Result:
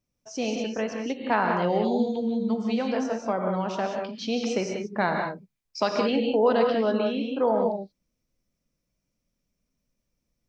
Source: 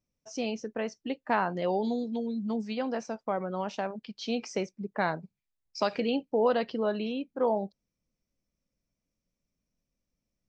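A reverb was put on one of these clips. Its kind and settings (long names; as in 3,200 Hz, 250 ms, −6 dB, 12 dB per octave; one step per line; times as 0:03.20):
reverb whose tail is shaped and stops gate 210 ms rising, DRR 2 dB
level +3 dB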